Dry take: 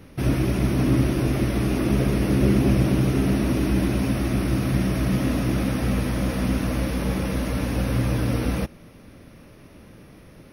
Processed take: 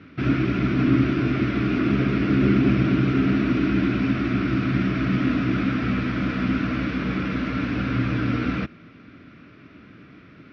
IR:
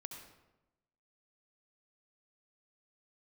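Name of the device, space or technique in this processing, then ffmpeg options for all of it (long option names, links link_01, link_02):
guitar cabinet: -af "highpass=100,equalizer=frequency=280:width_type=q:width=4:gain=5,equalizer=frequency=530:width_type=q:width=4:gain=-9,equalizer=frequency=860:width_type=q:width=4:gain=-10,equalizer=frequency=1400:width_type=q:width=4:gain=10,equalizer=frequency=2300:width_type=q:width=4:gain=5,lowpass=frequency=4200:width=0.5412,lowpass=frequency=4200:width=1.3066"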